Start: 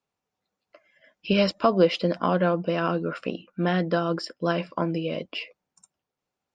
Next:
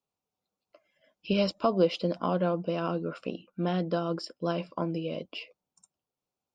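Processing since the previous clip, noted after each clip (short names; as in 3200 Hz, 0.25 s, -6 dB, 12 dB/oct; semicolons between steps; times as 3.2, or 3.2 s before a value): bell 1800 Hz -10.5 dB 0.61 oct; gain -4.5 dB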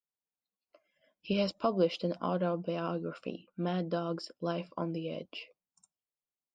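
spectral noise reduction 12 dB; gain -4 dB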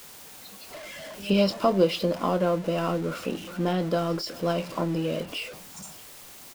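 zero-crossing step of -41.5 dBFS; doubler 25 ms -12 dB; pre-echo 0.125 s -22 dB; gain +6.5 dB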